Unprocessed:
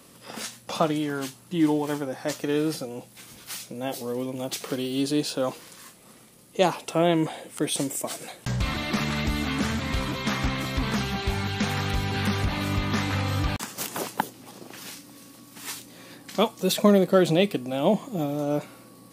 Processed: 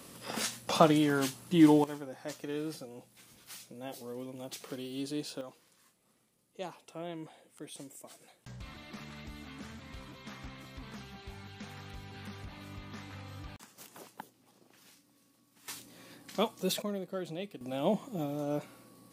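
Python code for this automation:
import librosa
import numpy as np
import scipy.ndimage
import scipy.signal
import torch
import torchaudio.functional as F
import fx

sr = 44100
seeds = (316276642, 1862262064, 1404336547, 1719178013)

y = fx.gain(x, sr, db=fx.steps((0.0, 0.5), (1.84, -12.0), (5.41, -20.0), (15.68, -8.0), (16.82, -19.0), (17.61, -8.0)))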